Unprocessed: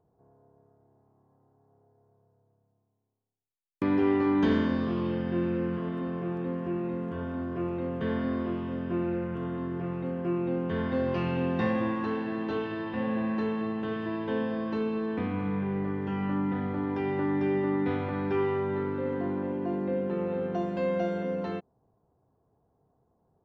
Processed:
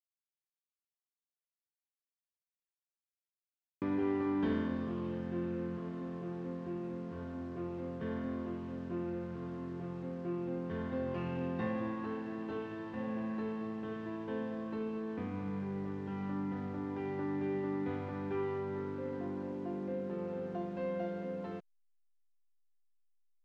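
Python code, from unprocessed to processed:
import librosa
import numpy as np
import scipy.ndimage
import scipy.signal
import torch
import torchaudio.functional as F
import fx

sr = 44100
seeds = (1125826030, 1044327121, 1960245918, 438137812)

y = fx.delta_hold(x, sr, step_db=-45.5)
y = fx.air_absorb(y, sr, metres=160.0)
y = y * librosa.db_to_amplitude(-8.0)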